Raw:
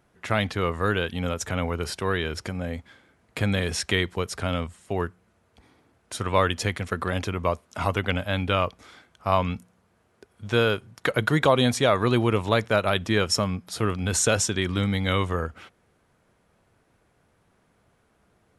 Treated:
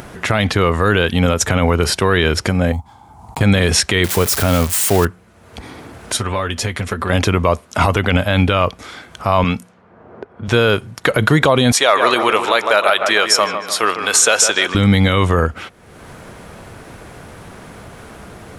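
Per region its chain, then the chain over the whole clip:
2.72–3.41 block floating point 7-bit + EQ curve 100 Hz 0 dB, 560 Hz -17 dB, 840 Hz +10 dB, 1700 Hz -23 dB, 7200 Hz -8 dB
4.04–5.05 switching spikes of -17 dBFS + high shelf 2400 Hz -10 dB
6.17–7.1 compressor 4:1, threshold -31 dBFS + notch comb 160 Hz
9.44–10.48 HPF 210 Hz 6 dB/oct + low-pass opened by the level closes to 790 Hz, open at -34.5 dBFS
11.72–14.75 HPF 670 Hz + dark delay 0.152 s, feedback 49%, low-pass 2300 Hz, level -8.5 dB
whole clip: upward compressor, threshold -38 dBFS; maximiser +16 dB; gain -1 dB

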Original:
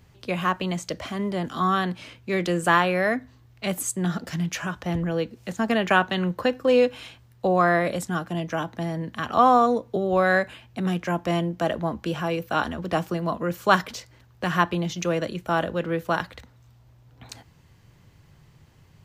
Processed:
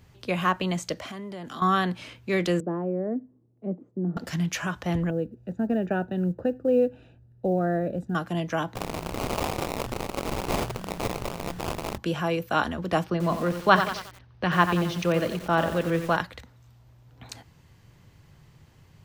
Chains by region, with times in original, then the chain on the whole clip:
0.93–1.62 compressor, threshold -33 dBFS + low shelf 81 Hz -11.5 dB + mismatched tape noise reduction encoder only
2.6–4.17 Butterworth band-pass 290 Hz, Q 0.98 + air absorption 130 m
5.1–8.15 running mean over 41 samples + short-mantissa float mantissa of 6-bit
8.75–11.98 infinite clipping + passive tone stack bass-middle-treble 10-0-10 + sample-rate reducer 1700 Hz, jitter 20%
13.04–16.17 polynomial smoothing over 15 samples + low shelf 85 Hz +5 dB + lo-fi delay 90 ms, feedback 55%, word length 6-bit, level -8 dB
whole clip: dry

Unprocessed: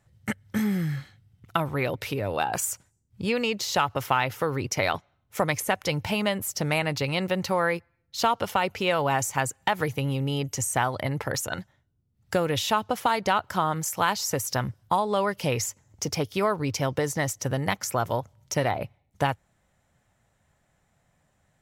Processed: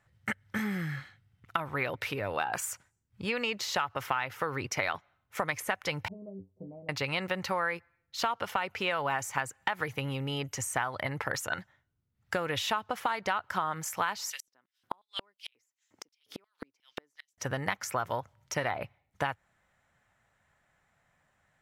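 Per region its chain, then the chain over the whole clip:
6.08–6.89 inverse Chebyshev low-pass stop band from 1600 Hz, stop band 60 dB + metallic resonator 92 Hz, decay 0.21 s, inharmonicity 0.008
14.3–17.38 LFO high-pass square 2.8 Hz 280–3400 Hz + flipped gate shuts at -21 dBFS, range -41 dB
whole clip: bell 1600 Hz +11 dB 2.2 oct; compressor 4:1, threshold -19 dBFS; gain -8 dB

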